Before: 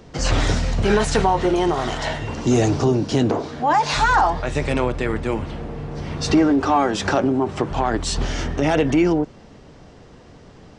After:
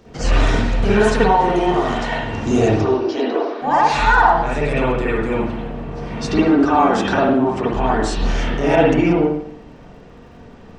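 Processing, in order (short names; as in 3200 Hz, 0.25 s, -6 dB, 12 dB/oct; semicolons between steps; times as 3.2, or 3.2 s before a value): 2.81–3.62 elliptic band-pass 320–5400 Hz, stop band 40 dB; crackle 52/s -48 dBFS; 8.24–8.76 doubler 30 ms -4 dB; reverb RT60 0.65 s, pre-delay 46 ms, DRR -7.5 dB; gain -4.5 dB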